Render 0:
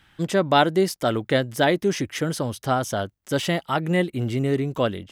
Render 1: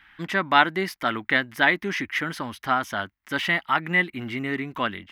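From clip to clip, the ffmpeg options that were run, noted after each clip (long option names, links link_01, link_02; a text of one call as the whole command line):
ffmpeg -i in.wav -af "equalizer=frequency=125:width_type=o:width=1:gain=-10,equalizer=frequency=250:width_type=o:width=1:gain=3,equalizer=frequency=500:width_type=o:width=1:gain=-11,equalizer=frequency=1000:width_type=o:width=1:gain=6,equalizer=frequency=2000:width_type=o:width=1:gain=12,equalizer=frequency=8000:width_type=o:width=1:gain=-11,volume=-3dB" out.wav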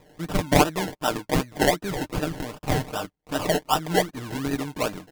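ffmpeg -i in.wav -af "crystalizer=i=0.5:c=0,acrusher=samples=29:mix=1:aa=0.000001:lfo=1:lforange=17.4:lforate=2.6,aecho=1:1:6.6:0.49,volume=-1dB" out.wav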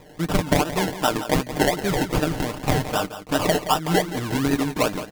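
ffmpeg -i in.wav -af "acompressor=threshold=-23dB:ratio=6,aecho=1:1:172:0.237,volume=7dB" out.wav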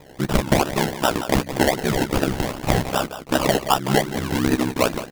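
ffmpeg -i in.wav -af "aeval=exprs='val(0)*sin(2*PI*33*n/s)':channel_layout=same,volume=4.5dB" out.wav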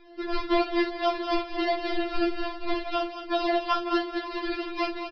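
ffmpeg -i in.wav -filter_complex "[0:a]aresample=11025,aresample=44100,asplit=2[link_01][link_02];[link_02]aecho=0:1:49.56|218.7:0.282|0.355[link_03];[link_01][link_03]amix=inputs=2:normalize=0,afftfilt=real='re*4*eq(mod(b,16),0)':imag='im*4*eq(mod(b,16),0)':win_size=2048:overlap=0.75,volume=-4dB" out.wav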